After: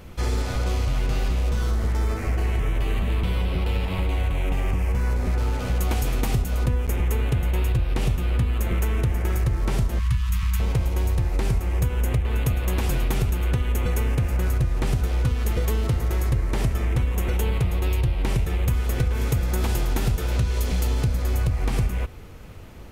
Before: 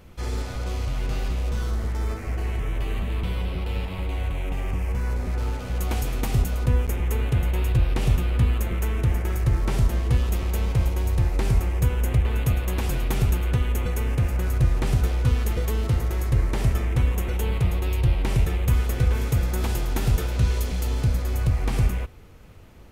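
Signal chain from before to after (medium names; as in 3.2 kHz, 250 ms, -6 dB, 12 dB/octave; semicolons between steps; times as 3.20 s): 9.99–10.60 s: Chebyshev band-stop 180–1000 Hz, order 4; compression, threshold -25 dBFS, peak gain reduction 11 dB; trim +6 dB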